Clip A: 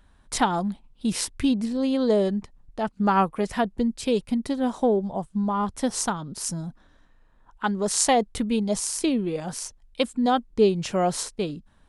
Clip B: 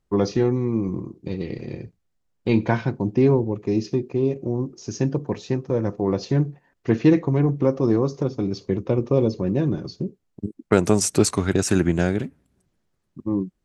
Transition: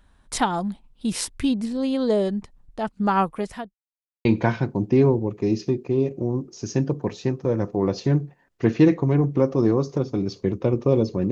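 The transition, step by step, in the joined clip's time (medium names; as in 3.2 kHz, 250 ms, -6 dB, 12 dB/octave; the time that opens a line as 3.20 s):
clip A
3.34–3.74 s: fade out linear
3.74–4.25 s: mute
4.25 s: go over to clip B from 2.50 s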